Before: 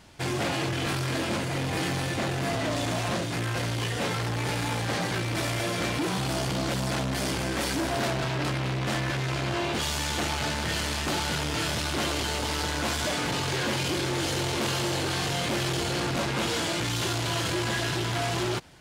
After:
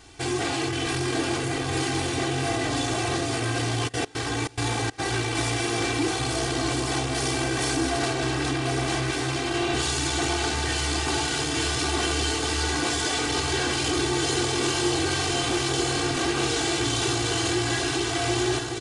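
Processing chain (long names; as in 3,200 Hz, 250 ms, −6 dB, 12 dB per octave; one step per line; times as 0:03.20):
downsampling to 22,050 Hz
in parallel at −1 dB: brickwall limiter −25.5 dBFS, peak gain reduction 8.5 dB
on the sum: parametric band 260 Hz +3 dB 0.78 octaves
on a send: delay that swaps between a low-pass and a high-pass 754 ms, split 1,600 Hz, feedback 68%, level −4 dB
0:03.87–0:04.98: on the sum: gate pattern "xx..x.xxx.x" 141 BPM −24 dB
high-shelf EQ 5,200 Hz +7 dB
comb filter 2.6 ms, depth 91%
level −5.5 dB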